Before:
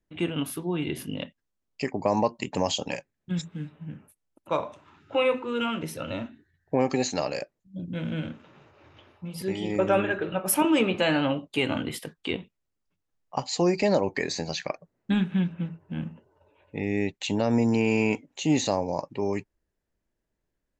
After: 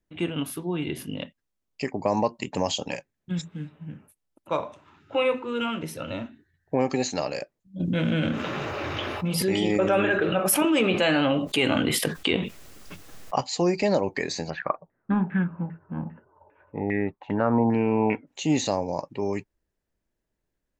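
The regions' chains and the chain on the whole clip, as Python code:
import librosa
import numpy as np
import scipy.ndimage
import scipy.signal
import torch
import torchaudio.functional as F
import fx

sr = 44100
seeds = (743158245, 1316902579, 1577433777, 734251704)

y = fx.chain(x, sr, fx.low_shelf(hz=190.0, db=-5.5),
    fx.notch(hz=920.0, q=13.0),
    fx.env_flatten(amount_pct=70), at=(7.8, 13.41))
y = fx.chain(y, sr, fx.high_shelf(hz=5900.0, db=-8.5),
    fx.filter_lfo_lowpass(shape='saw_down', hz=2.5, low_hz=780.0, high_hz=1900.0, q=5.0), at=(14.5, 18.27))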